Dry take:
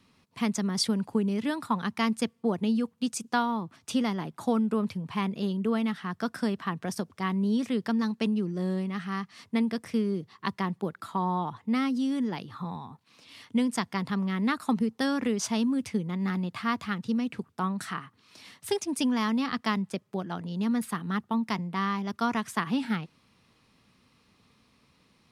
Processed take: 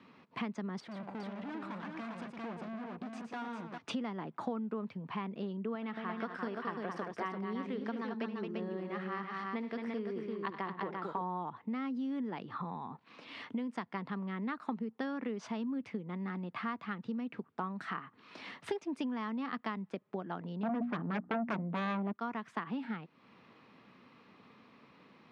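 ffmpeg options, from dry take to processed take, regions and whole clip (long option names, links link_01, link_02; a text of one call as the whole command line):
ffmpeg -i in.wav -filter_complex "[0:a]asettb=1/sr,asplit=3[link_01][link_02][link_03];[link_01]atrim=end=0.804[link_04];[link_02]atrim=start=0.8:end=3.78,asetpts=PTS-STARTPTS,afade=type=in:duration=0.004:curve=qsin,afade=type=out:start_time=2.976:duration=0.004:curve=qsin,bandreject=frequency=50:width_type=h:width=6,bandreject=frequency=100:width_type=h:width=6,bandreject=frequency=150:width_type=h:width=6,aeval=exprs='(tanh(126*val(0)+0.5)-tanh(0.5))/126':channel_layout=same,aecho=1:1:114|400:0.422|0.596,atrim=end_sample=131418[link_05];[link_03]atrim=start=3.776[link_06];[link_04][link_05]acrossfade=duration=0.004:curve1=hsin:curve2=qsin[link_07];[link_07][link_06]acrossfade=duration=0.004:curve1=qsin:curve2=hsin,asettb=1/sr,asplit=3[link_08][link_09][link_10];[link_08]atrim=end=5.754[link_11];[link_09]atrim=start=5.75:end=11.21,asetpts=PTS-STARTPTS,afade=type=in:duration=0.004:curve=qsin,afade=type=out:start_time=5.456:duration=0.004:curve=qsin,equalizer=frequency=190:width_type=o:width=1:gain=-6,aecho=1:1:72|100|220|342:0.211|0.119|0.473|0.531,atrim=end_sample=240786[link_12];[link_10]atrim=start=11.206[link_13];[link_11][link_12]acrossfade=duration=0.004:curve1=hsin:curve2=qsin[link_14];[link_14][link_13]acrossfade=duration=0.004:curve1=qsin:curve2=hsin,asettb=1/sr,asplit=3[link_15][link_16][link_17];[link_15]atrim=end=20.634[link_18];[link_16]atrim=start=20.63:end=22.13,asetpts=PTS-STARTPTS,afade=type=in:duration=0.004:curve=qsin,afade=type=out:start_time=1.496:duration=0.004:curve=qsin,bandreject=frequency=60:width_type=h:width=6,bandreject=frequency=120:width_type=h:width=6,bandreject=frequency=180:width_type=h:width=6,bandreject=frequency=240:width_type=h:width=6,bandreject=frequency=300:width_type=h:width=6,adynamicsmooth=sensitivity=1:basefreq=1200,aeval=exprs='0.158*sin(PI/2*3.98*val(0)/0.158)':channel_layout=same[link_19];[link_17]atrim=start=22.126[link_20];[link_18][link_19]acrossfade=duration=0.004:curve1=hsin:curve2=qsin[link_21];[link_21][link_20]acrossfade=duration=0.004:curve1=qsin:curve2=hsin,lowpass=2200,acompressor=threshold=-44dB:ratio=4,highpass=210,volume=7.5dB" out.wav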